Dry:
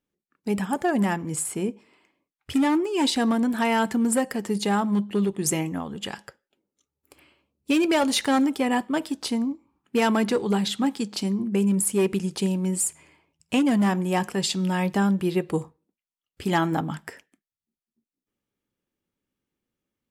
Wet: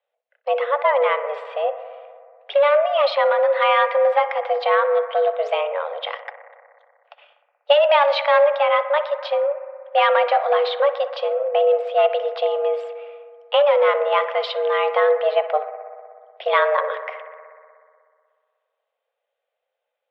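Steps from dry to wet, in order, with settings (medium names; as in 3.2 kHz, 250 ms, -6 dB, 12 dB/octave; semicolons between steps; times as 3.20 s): mistuned SSB +290 Hz 190–3300 Hz; 6.18–7.73 s: transient shaper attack +4 dB, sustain -8 dB; bucket-brigade echo 61 ms, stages 1024, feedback 82%, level -14.5 dB; trim +5.5 dB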